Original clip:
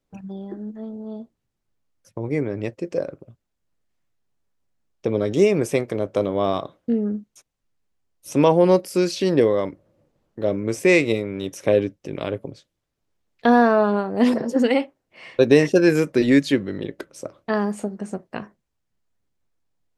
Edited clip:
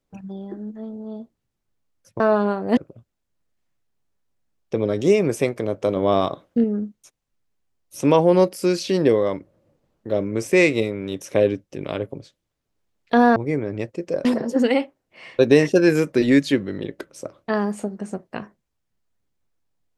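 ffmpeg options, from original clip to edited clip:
-filter_complex "[0:a]asplit=7[a][b][c][d][e][f][g];[a]atrim=end=2.202[h];[b]atrim=start=13.678:end=14.252[i];[c]atrim=start=3.088:end=6.282[j];[d]atrim=start=6.278:end=6.962,asetpts=PTS-STARTPTS,volume=3dB[k];[e]atrim=start=6.958:end=13.682[l];[f]atrim=start=2.198:end=3.092[m];[g]atrim=start=14.248[n];[h][i]acrossfade=d=0.004:c1=hsin:c2=hsin[o];[o][j]acrossfade=d=0.004:c1=hsin:c2=hsin[p];[p][k]acrossfade=d=0.004:c1=hsin:c2=hsin[q];[q][l]acrossfade=d=0.004:c1=hsin:c2=hsin[r];[r][m]acrossfade=d=0.004:c1=hsin:c2=hsin[s];[s][n]acrossfade=d=0.004:c1=hsin:c2=hsin"

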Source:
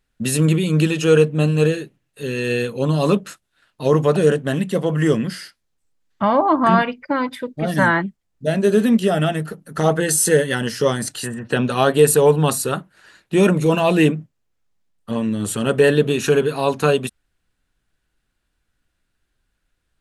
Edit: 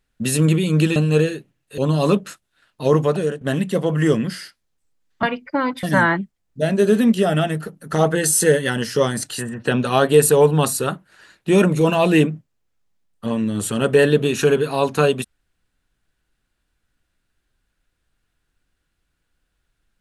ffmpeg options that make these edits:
-filter_complex "[0:a]asplit=6[a][b][c][d][e][f];[a]atrim=end=0.962[g];[b]atrim=start=1.418:end=2.242[h];[c]atrim=start=2.778:end=4.41,asetpts=PTS-STARTPTS,afade=t=out:st=1.182:d=0.45:silence=0.188365[i];[d]atrim=start=4.41:end=6.232,asetpts=PTS-STARTPTS,afade=t=in:d=0.004:c=hsin:silence=0.188365[j];[e]atrim=start=6.788:end=7.392[k];[f]atrim=start=7.678[l];[g][h]acrossfade=d=0.004:c1=hsin:c2=hsin[m];[i][j]concat=n=2:v=0:a=1[n];[m][n]acrossfade=d=0.004:c1=hsin:c2=hsin[o];[o][k]acrossfade=d=0.004:c1=hsin:c2=hsin[p];[p][l]acrossfade=d=0.004:c1=hsin:c2=hsin"

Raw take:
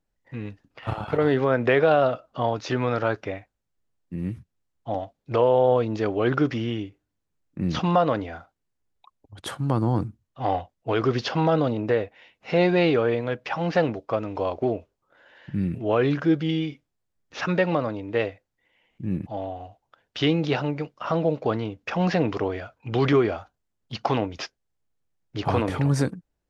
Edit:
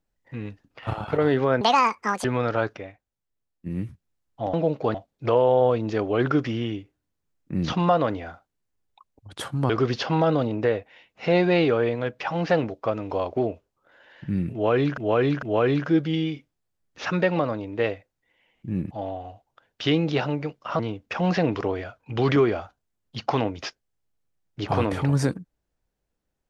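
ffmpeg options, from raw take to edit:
-filter_complex "[0:a]asplit=11[a][b][c][d][e][f][g][h][i][j][k];[a]atrim=end=1.614[l];[b]atrim=start=1.61:end=2.72,asetpts=PTS-STARTPTS,asetrate=77175,aresample=44100[m];[c]atrim=start=2.716:end=3.252[n];[d]atrim=start=3.248:end=4.142,asetpts=PTS-STARTPTS,volume=-6.5dB[o];[e]atrim=start=4.138:end=5.012[p];[f]atrim=start=21.148:end=21.562[q];[g]atrim=start=5.008:end=9.762[r];[h]atrim=start=10.948:end=16.232[s];[i]atrim=start=15.778:end=16.232[t];[j]atrim=start=15.778:end=21.152[u];[k]atrim=start=21.558[v];[l][m]acrossfade=d=0.004:c1=hsin:c2=hsin[w];[w][n]acrossfade=d=0.004:c1=hsin:c2=hsin[x];[x][o]acrossfade=d=0.004:c1=hsin:c2=hsin[y];[y][p]acrossfade=d=0.004:c1=hsin:c2=hsin[z];[z][q]acrossfade=d=0.004:c1=hsin:c2=hsin[aa];[aa][r]acrossfade=d=0.004:c1=hsin:c2=hsin[ab];[ab][s]acrossfade=d=0.004:c1=hsin:c2=hsin[ac];[ac][t]acrossfade=d=0.004:c1=hsin:c2=hsin[ad];[ad][u]acrossfade=d=0.004:c1=hsin:c2=hsin[ae];[ae][v]acrossfade=d=0.004:c1=hsin:c2=hsin"

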